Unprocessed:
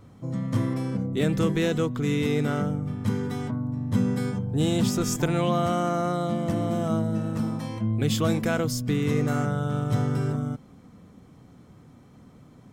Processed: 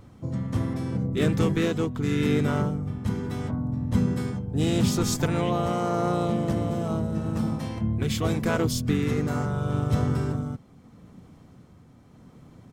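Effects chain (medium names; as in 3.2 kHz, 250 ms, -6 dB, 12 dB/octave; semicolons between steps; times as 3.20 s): tremolo 0.8 Hz, depth 32%; harmony voices -7 st -6 dB, -3 st -9 dB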